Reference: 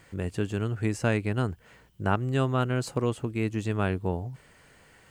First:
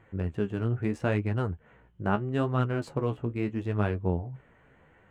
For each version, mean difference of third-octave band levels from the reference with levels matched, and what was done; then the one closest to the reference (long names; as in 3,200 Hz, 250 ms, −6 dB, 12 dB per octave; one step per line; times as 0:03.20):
4.0 dB: adaptive Wiener filter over 9 samples
high-shelf EQ 3,700 Hz −11 dB
flanger 0.77 Hz, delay 8.3 ms, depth 9.3 ms, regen +39%
level +3 dB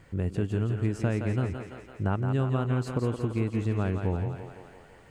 5.5 dB: spectral tilt −2 dB per octave
downward compressor 2.5 to 1, threshold −23 dBFS, peak gain reduction 6 dB
on a send: feedback echo with a high-pass in the loop 169 ms, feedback 68%, high-pass 270 Hz, level −5.5 dB
on the sum: level −1.5 dB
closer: first